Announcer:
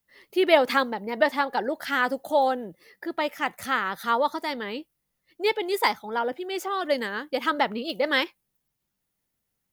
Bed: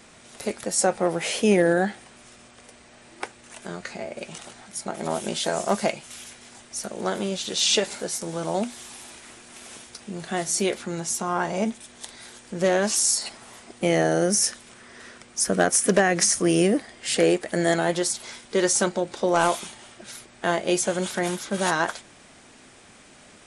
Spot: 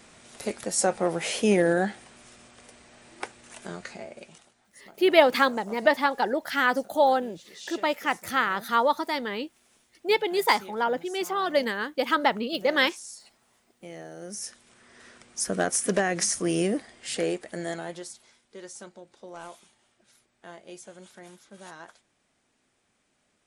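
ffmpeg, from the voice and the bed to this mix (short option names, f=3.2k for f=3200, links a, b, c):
-filter_complex "[0:a]adelay=4650,volume=1dB[a];[1:a]volume=13dB,afade=t=out:st=3.68:d=0.83:silence=0.11885,afade=t=in:st=14.17:d=1.1:silence=0.16788,afade=t=out:st=16.79:d=1.55:silence=0.158489[b];[a][b]amix=inputs=2:normalize=0"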